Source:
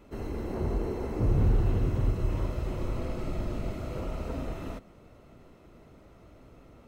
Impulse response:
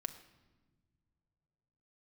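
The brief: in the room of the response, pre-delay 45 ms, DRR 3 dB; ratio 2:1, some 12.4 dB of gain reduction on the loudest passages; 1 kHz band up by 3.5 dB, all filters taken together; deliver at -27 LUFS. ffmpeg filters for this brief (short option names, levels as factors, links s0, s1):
-filter_complex "[0:a]equalizer=f=1000:t=o:g=4.5,acompressor=threshold=0.00631:ratio=2,asplit=2[s0][s1];[1:a]atrim=start_sample=2205,adelay=45[s2];[s1][s2]afir=irnorm=-1:irlink=0,volume=0.841[s3];[s0][s3]amix=inputs=2:normalize=0,volume=4.47"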